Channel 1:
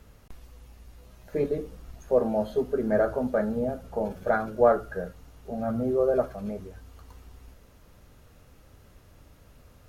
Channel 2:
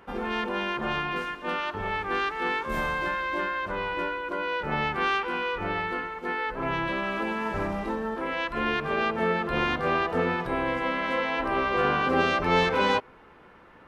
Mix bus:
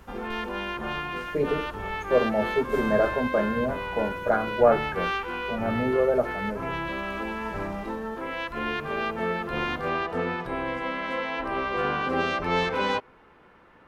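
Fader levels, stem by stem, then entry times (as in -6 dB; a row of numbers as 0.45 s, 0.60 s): +1.0 dB, -2.5 dB; 0.00 s, 0.00 s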